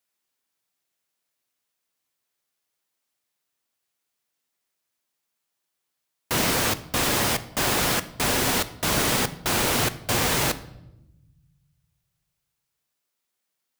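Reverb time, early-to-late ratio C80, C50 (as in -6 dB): 0.90 s, 19.0 dB, 16.0 dB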